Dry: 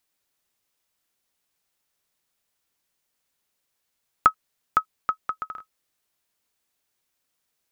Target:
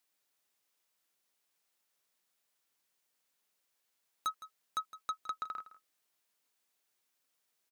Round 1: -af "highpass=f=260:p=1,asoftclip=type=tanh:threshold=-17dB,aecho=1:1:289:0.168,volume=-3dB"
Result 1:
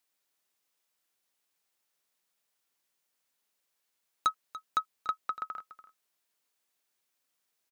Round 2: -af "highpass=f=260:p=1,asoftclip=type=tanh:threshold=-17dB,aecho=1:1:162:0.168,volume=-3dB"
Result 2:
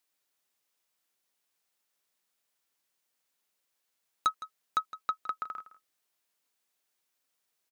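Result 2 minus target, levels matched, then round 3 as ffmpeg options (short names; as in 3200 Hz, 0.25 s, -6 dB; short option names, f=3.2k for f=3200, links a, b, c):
soft clip: distortion -6 dB
-af "highpass=f=260:p=1,asoftclip=type=tanh:threshold=-27dB,aecho=1:1:162:0.168,volume=-3dB"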